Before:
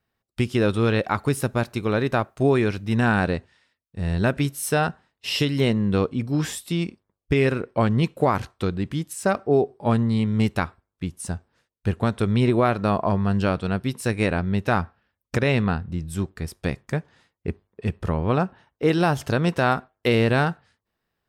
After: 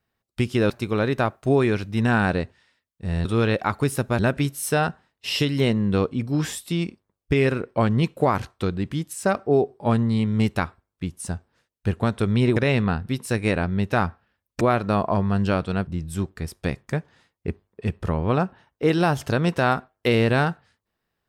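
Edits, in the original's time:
0.7–1.64 move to 4.19
12.56–13.82 swap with 15.36–15.87

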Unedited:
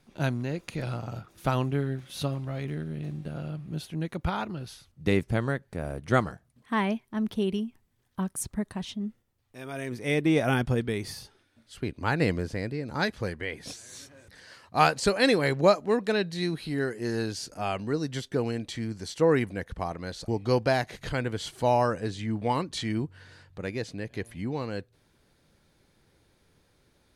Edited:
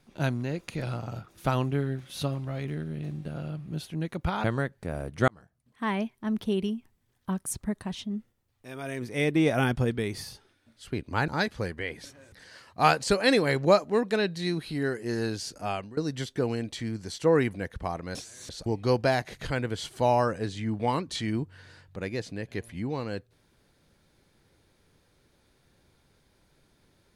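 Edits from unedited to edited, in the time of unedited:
4.44–5.34 cut
6.18–7.32 fade in equal-power
12.18–12.9 cut
13.67–14.01 move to 20.11
17.64–17.93 fade out, to -20 dB

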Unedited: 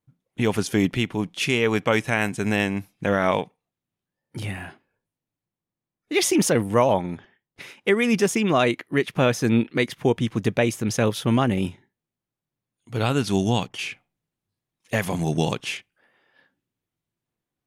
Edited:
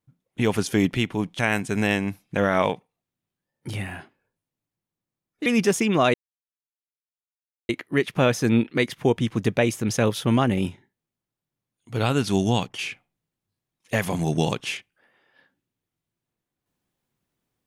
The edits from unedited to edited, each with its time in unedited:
1.39–2.08 cut
6.15–8.01 cut
8.69 insert silence 1.55 s

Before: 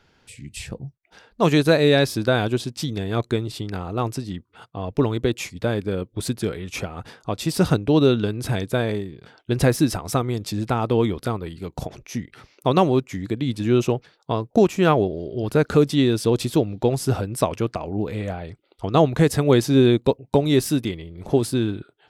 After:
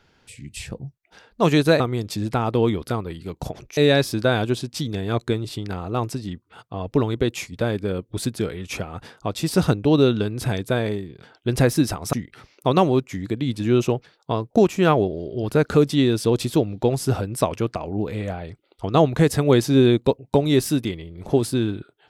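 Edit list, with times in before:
10.16–12.13 move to 1.8

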